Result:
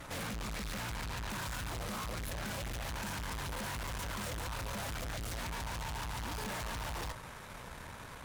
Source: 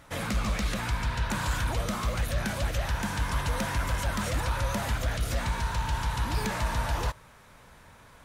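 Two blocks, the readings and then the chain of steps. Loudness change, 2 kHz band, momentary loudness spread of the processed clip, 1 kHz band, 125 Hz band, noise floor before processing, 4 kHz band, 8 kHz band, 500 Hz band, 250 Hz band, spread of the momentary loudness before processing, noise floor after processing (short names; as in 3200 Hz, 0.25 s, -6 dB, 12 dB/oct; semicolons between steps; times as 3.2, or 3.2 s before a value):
-9.5 dB, -8.0 dB, 5 LU, -8.5 dB, -11.5 dB, -54 dBFS, -6.0 dB, -5.5 dB, -9.0 dB, -9.5 dB, 1 LU, -48 dBFS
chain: tube stage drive 48 dB, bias 0.7; gain +9.5 dB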